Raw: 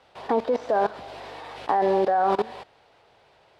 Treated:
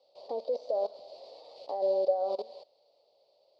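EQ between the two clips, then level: two resonant band-passes 1.6 kHz, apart 3 oct; 0.0 dB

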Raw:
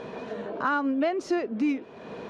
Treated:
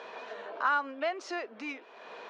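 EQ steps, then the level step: band-pass 790–6200 Hz; 0.0 dB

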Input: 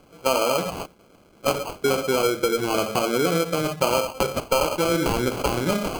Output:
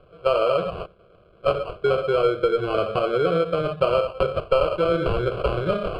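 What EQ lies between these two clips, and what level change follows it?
tape spacing loss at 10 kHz 29 dB; static phaser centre 1.3 kHz, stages 8; +5.0 dB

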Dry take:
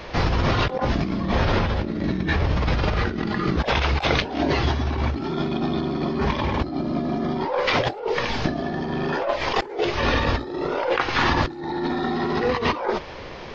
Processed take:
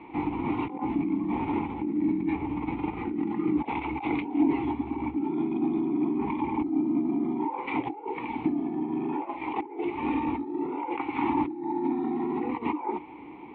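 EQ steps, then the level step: vowel filter u; Butterworth band-stop 5.5 kHz, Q 1.8; distance through air 410 m; +7.0 dB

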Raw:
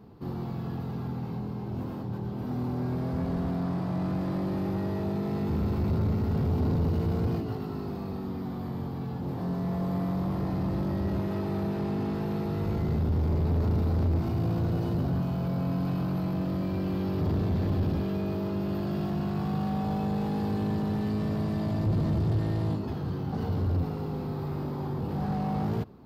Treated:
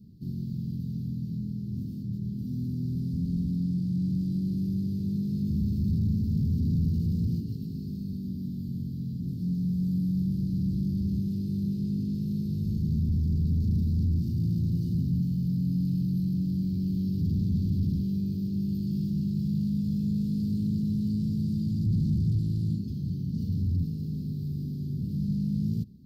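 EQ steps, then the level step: Chebyshev band-stop 200–4600 Hz, order 3; peaking EQ 540 Hz +12 dB 2 oct; 0.0 dB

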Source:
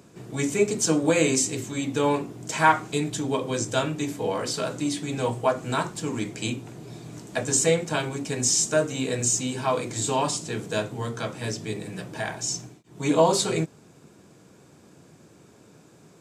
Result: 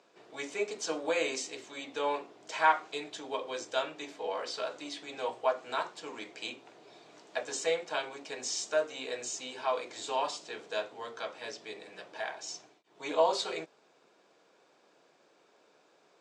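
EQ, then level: Chebyshev band-pass 570–4300 Hz, order 2; -5.5 dB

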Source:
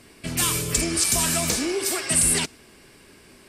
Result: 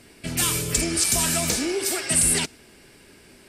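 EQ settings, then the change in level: band-stop 1.1 kHz, Q 8.4; 0.0 dB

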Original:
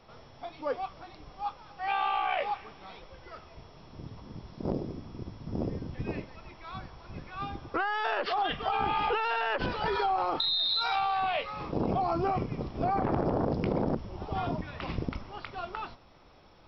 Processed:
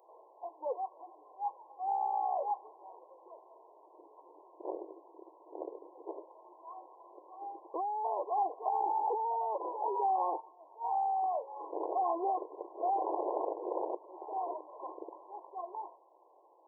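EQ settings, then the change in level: brick-wall FIR band-pass 310–1100 Hz; tilt EQ +4 dB/octave; 0.0 dB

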